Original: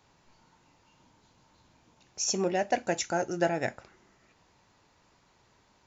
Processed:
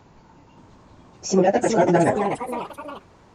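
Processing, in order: plain phase-vocoder stretch 0.57×; in parallel at -2 dB: peak limiter -29 dBFS, peak gain reduction 9 dB; on the sum: tilt shelf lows +7 dB, about 1.4 kHz; ever faster or slower copies 576 ms, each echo +3 st, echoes 3, each echo -6 dB; trim +7 dB

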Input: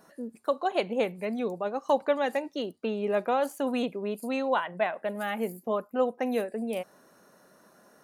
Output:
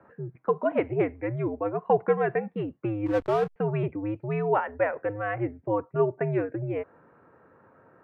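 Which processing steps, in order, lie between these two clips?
mistuned SSB -100 Hz 220–2300 Hz; 3.06–3.56 s: hysteresis with a dead band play -30.5 dBFS; trim +2.5 dB

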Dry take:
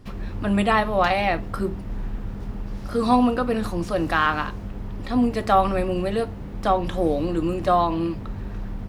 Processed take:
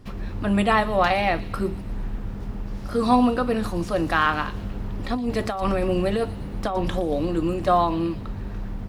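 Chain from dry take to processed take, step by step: 4.54–7.12 s: compressor with a negative ratio -23 dBFS, ratio -1; feedback echo behind a high-pass 117 ms, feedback 62%, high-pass 3.5 kHz, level -12 dB

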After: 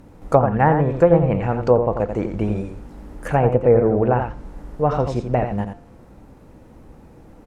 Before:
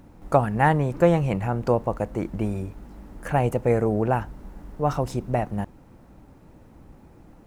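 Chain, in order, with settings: peaking EQ 480 Hz +5 dB 0.31 oct; on a send: delay 87 ms -7.5 dB; on the sum: vibrato 7.7 Hz 33 cents; de-hum 174.6 Hz, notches 31; low-pass that closes with the level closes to 1.4 kHz, closed at -14.5 dBFS; trim +3.5 dB

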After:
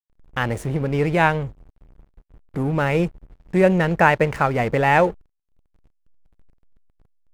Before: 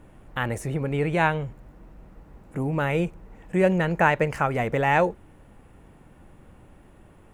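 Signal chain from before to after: whistle 450 Hz -57 dBFS; hysteresis with a dead band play -35 dBFS; trim +4.5 dB

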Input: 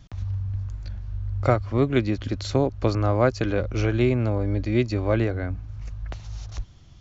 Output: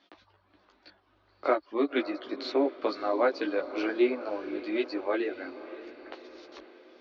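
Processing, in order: elliptic band-pass 310–4400 Hz, stop band 40 dB; reverb removal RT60 0.82 s; chorus voices 4, 0.33 Hz, delay 15 ms, depth 4.9 ms; on a send: echo that smears into a reverb 562 ms, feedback 56%, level -14 dB; on the sum: trim +1 dB

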